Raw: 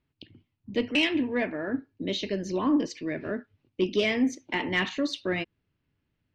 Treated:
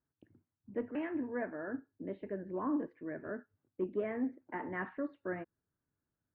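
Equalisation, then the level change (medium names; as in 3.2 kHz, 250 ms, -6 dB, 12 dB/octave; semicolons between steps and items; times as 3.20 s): Chebyshev low-pass 1.6 kHz, order 4; differentiator; tilt EQ -4.5 dB/octave; +10.0 dB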